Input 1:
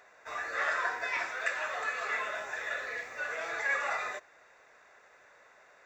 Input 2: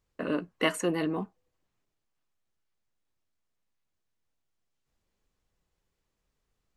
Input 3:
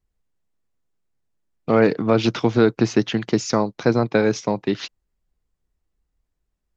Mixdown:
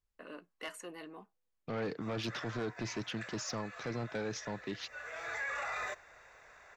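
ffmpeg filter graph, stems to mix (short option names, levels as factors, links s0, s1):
-filter_complex "[0:a]asubboost=boost=5:cutoff=120,adelay=1750,volume=1.26[s0];[1:a]highpass=f=710:p=1,asoftclip=type=tanh:threshold=0.0944,volume=0.251[s1];[2:a]equalizer=f=300:w=0.36:g=-5,asoftclip=type=tanh:threshold=0.133,volume=0.299,asplit=2[s2][s3];[s3]apad=whole_len=335406[s4];[s0][s4]sidechaincompress=threshold=0.00398:ratio=20:attack=12:release=858[s5];[s5][s1][s2]amix=inputs=3:normalize=0,alimiter=level_in=2.11:limit=0.0631:level=0:latency=1:release=13,volume=0.473"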